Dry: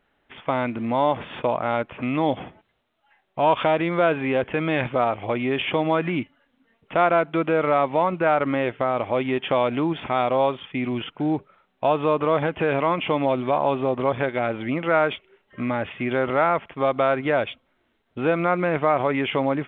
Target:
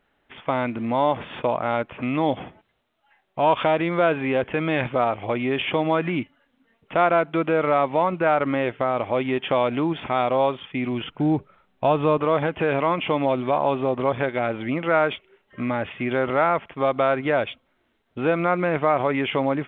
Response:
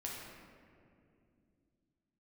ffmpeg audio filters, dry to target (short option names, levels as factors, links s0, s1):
-filter_complex "[0:a]asettb=1/sr,asplit=3[s0][s1][s2];[s0]atrim=end=11.034[s3];[s1]atrim=start=11.03:end=12.18,asetpts=PTS-STARTPTS,afade=t=in:d=0.004:c=qsin,afade=t=out:st=1.146:d=0.004:c=qsin,lowshelf=f=150:g=10.5[s4];[s2]atrim=start=12.176[s5];[s3][s4]acrossfade=d=0.004:c1=hsin:c2=qsin[s6];[s6][s5]acrossfade=d=0.004:c1=qsin:c2=hsin"